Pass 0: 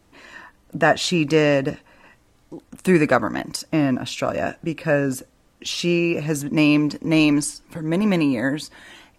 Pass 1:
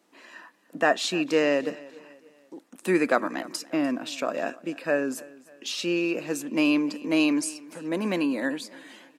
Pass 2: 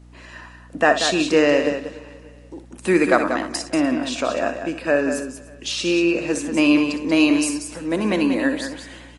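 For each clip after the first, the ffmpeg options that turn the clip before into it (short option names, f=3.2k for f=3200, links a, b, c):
-af "highpass=f=230:w=0.5412,highpass=f=230:w=1.3066,aecho=1:1:296|592|888:0.0891|0.0383|0.0165,volume=-5dB"
-af "aecho=1:1:61.22|186.6:0.282|0.398,aeval=exprs='val(0)+0.00316*(sin(2*PI*60*n/s)+sin(2*PI*2*60*n/s)/2+sin(2*PI*3*60*n/s)/3+sin(2*PI*4*60*n/s)/4+sin(2*PI*5*60*n/s)/5)':c=same,volume=6dB" -ar 24000 -c:a libmp3lame -b:a 48k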